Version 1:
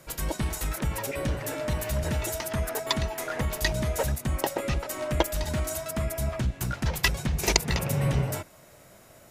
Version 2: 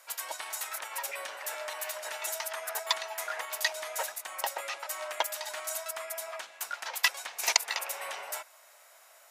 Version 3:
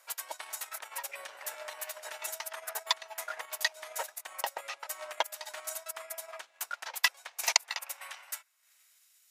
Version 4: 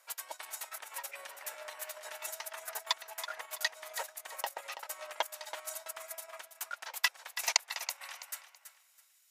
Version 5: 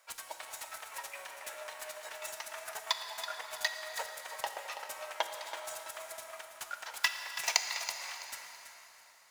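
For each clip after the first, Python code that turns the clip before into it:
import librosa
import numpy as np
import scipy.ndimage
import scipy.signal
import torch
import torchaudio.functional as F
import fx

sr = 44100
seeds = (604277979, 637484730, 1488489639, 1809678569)

y1 = scipy.signal.sosfilt(scipy.signal.butter(4, 730.0, 'highpass', fs=sr, output='sos'), x)
y1 = y1 * 10.0 ** (-1.0 / 20.0)
y2 = fx.filter_sweep_highpass(y1, sr, from_hz=240.0, to_hz=3300.0, start_s=6.82, end_s=9.09, q=0.77)
y2 = fx.transient(y2, sr, attack_db=5, sustain_db=-10)
y2 = y2 * 10.0 ** (-5.0 / 20.0)
y3 = fx.echo_feedback(y2, sr, ms=329, feedback_pct=27, wet_db=-11)
y3 = y3 * 10.0 ** (-3.0 / 20.0)
y4 = scipy.ndimage.median_filter(y3, 3, mode='constant')
y4 = fx.rev_plate(y4, sr, seeds[0], rt60_s=4.2, hf_ratio=0.75, predelay_ms=0, drr_db=5.0)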